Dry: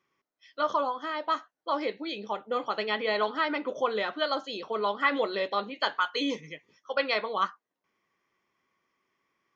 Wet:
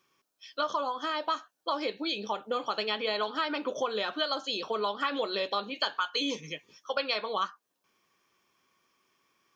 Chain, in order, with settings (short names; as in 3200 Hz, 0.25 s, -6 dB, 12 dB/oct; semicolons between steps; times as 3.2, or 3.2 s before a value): high shelf 2700 Hz +10 dB; notch 2000 Hz, Q 5.3; compressor 3:1, threshold -32 dBFS, peak gain reduction 9.5 dB; gain +3 dB